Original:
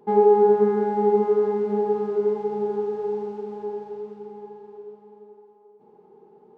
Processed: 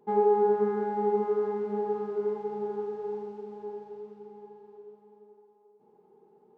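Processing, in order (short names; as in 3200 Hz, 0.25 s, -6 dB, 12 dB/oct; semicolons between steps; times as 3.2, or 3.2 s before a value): dynamic EQ 1300 Hz, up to +5 dB, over -36 dBFS, Q 1; gain -8 dB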